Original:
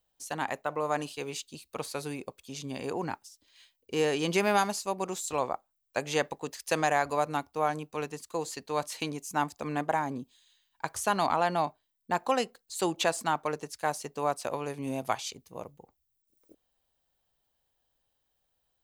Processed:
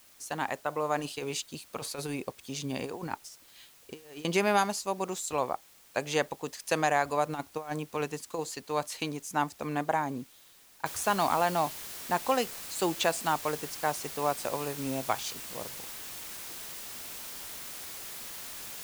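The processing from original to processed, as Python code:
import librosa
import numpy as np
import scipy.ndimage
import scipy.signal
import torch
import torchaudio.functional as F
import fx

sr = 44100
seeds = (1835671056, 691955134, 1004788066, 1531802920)

y = fx.over_compress(x, sr, threshold_db=-36.0, ratio=-0.5, at=(0.98, 4.25))
y = fx.over_compress(y, sr, threshold_db=-32.0, ratio=-0.5, at=(7.29, 8.39))
y = fx.noise_floor_step(y, sr, seeds[0], at_s=10.86, before_db=-58, after_db=-42, tilt_db=0.0)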